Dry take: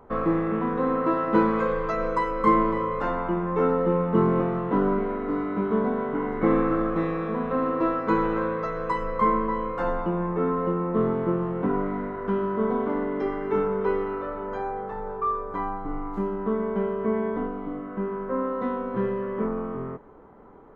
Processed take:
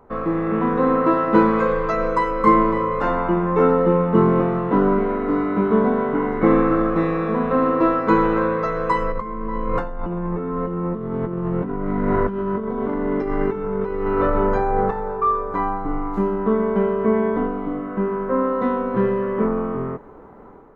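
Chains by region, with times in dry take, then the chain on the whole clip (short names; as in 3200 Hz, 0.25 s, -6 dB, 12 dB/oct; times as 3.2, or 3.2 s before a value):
9.12–14.91 low shelf 160 Hz +10.5 dB + negative-ratio compressor -30 dBFS
whole clip: notch 3200 Hz, Q 23; AGC gain up to 7 dB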